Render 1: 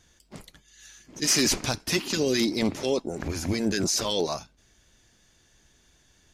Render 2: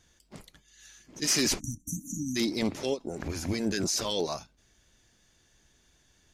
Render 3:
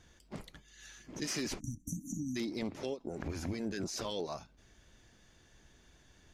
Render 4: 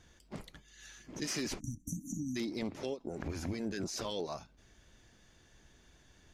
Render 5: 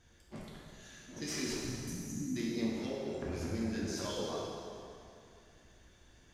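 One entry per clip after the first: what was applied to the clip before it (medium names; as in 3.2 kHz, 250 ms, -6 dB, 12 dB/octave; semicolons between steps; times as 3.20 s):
spectral selection erased 1.60–2.36 s, 310–5700 Hz; endings held to a fixed fall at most 390 dB/s; trim -3.5 dB
treble shelf 3.8 kHz -9.5 dB; compression 3:1, threshold -43 dBFS, peak gain reduction 14 dB; trim +4.5 dB
no audible change
plate-style reverb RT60 2.6 s, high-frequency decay 0.8×, pre-delay 0 ms, DRR -5 dB; trim -5.5 dB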